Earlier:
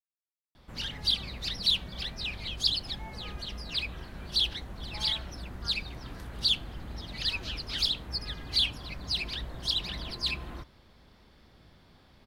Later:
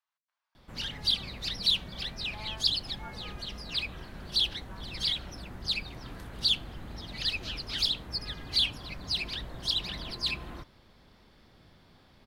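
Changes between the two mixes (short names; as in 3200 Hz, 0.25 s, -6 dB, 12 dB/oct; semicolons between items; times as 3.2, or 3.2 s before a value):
speech: entry -2.60 s; master: add bell 61 Hz -5 dB 0.58 oct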